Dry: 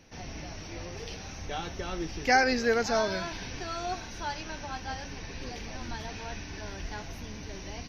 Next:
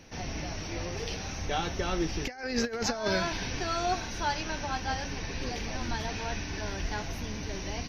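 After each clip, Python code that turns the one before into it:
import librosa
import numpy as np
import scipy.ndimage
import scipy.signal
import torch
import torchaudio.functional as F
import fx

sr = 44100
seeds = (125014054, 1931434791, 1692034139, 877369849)

y = fx.over_compress(x, sr, threshold_db=-30.0, ratio=-0.5)
y = y * librosa.db_to_amplitude(2.5)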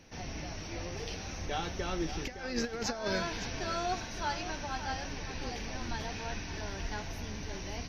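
y = fx.echo_feedback(x, sr, ms=564, feedback_pct=39, wet_db=-11.0)
y = y * librosa.db_to_amplitude(-4.5)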